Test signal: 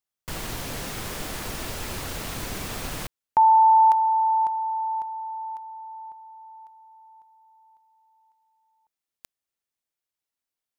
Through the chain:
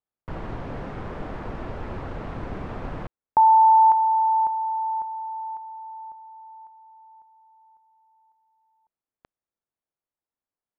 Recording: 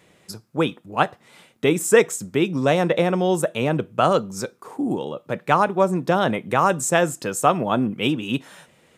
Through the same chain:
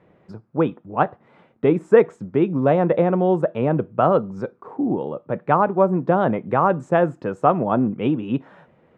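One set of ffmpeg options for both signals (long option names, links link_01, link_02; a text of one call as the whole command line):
ffmpeg -i in.wav -af "lowpass=1200,volume=2dB" out.wav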